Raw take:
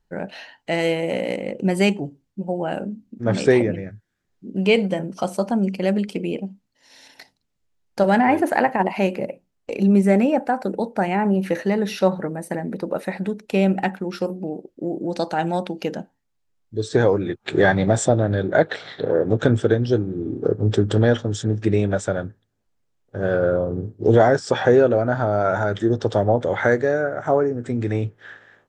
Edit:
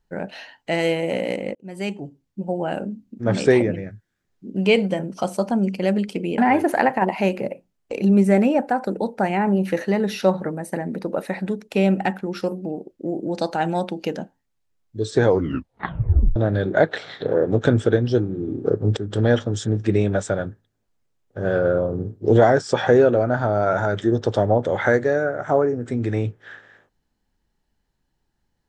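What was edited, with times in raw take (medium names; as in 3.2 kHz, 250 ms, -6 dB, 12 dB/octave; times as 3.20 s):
1.55–2.44 s: fade in
6.38–8.16 s: delete
17.08 s: tape stop 1.06 s
20.75–21.10 s: fade in, from -15.5 dB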